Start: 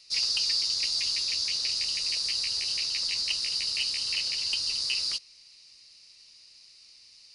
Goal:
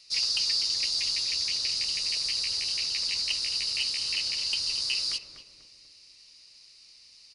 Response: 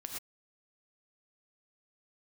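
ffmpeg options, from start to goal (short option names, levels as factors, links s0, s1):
-filter_complex "[0:a]asplit=2[s0][s1];[s1]adelay=245,lowpass=f=1000:p=1,volume=0.531,asplit=2[s2][s3];[s3]adelay=245,lowpass=f=1000:p=1,volume=0.54,asplit=2[s4][s5];[s5]adelay=245,lowpass=f=1000:p=1,volume=0.54,asplit=2[s6][s7];[s7]adelay=245,lowpass=f=1000:p=1,volume=0.54,asplit=2[s8][s9];[s9]adelay=245,lowpass=f=1000:p=1,volume=0.54,asplit=2[s10][s11];[s11]adelay=245,lowpass=f=1000:p=1,volume=0.54,asplit=2[s12][s13];[s13]adelay=245,lowpass=f=1000:p=1,volume=0.54[s14];[s0][s2][s4][s6][s8][s10][s12][s14]amix=inputs=8:normalize=0"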